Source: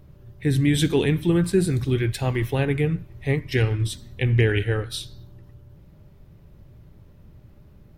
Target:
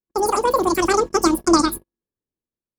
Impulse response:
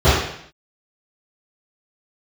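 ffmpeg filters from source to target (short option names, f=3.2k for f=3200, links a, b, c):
-af "agate=range=-50dB:threshold=-37dB:ratio=16:detection=peak,dynaudnorm=f=410:g=9:m=11.5dB,asetrate=126126,aresample=44100"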